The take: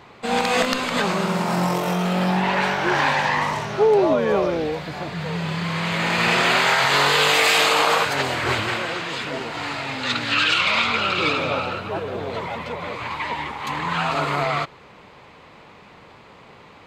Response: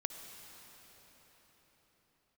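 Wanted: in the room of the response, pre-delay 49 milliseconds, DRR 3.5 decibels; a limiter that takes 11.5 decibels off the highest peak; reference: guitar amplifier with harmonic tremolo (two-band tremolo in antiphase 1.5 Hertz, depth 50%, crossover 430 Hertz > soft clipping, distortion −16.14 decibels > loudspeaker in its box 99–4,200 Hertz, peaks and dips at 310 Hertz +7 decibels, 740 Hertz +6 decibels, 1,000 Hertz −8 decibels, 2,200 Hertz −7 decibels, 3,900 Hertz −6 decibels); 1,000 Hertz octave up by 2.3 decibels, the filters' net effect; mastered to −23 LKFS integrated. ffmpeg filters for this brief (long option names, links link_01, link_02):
-filter_complex "[0:a]equalizer=frequency=1000:width_type=o:gain=4,alimiter=limit=-15dB:level=0:latency=1,asplit=2[link_01][link_02];[1:a]atrim=start_sample=2205,adelay=49[link_03];[link_02][link_03]afir=irnorm=-1:irlink=0,volume=-3.5dB[link_04];[link_01][link_04]amix=inputs=2:normalize=0,acrossover=split=430[link_05][link_06];[link_05]aeval=exprs='val(0)*(1-0.5/2+0.5/2*cos(2*PI*1.5*n/s))':channel_layout=same[link_07];[link_06]aeval=exprs='val(0)*(1-0.5/2-0.5/2*cos(2*PI*1.5*n/s))':channel_layout=same[link_08];[link_07][link_08]amix=inputs=2:normalize=0,asoftclip=threshold=-19.5dB,highpass=99,equalizer=frequency=310:width_type=q:width=4:gain=7,equalizer=frequency=740:width_type=q:width=4:gain=6,equalizer=frequency=1000:width_type=q:width=4:gain=-8,equalizer=frequency=2200:width_type=q:width=4:gain=-7,equalizer=frequency=3900:width_type=q:width=4:gain=-6,lowpass=frequency=4200:width=0.5412,lowpass=frequency=4200:width=1.3066,volume=4.5dB"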